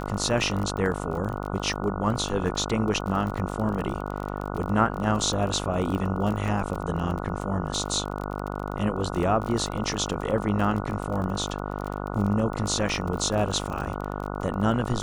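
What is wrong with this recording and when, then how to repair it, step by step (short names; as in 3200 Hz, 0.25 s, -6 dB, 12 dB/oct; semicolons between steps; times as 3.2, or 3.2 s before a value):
buzz 50 Hz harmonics 29 -32 dBFS
crackle 33/s -30 dBFS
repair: de-click; de-hum 50 Hz, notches 29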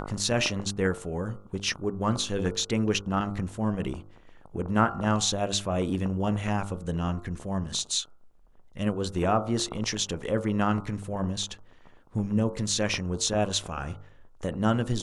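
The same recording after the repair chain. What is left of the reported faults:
none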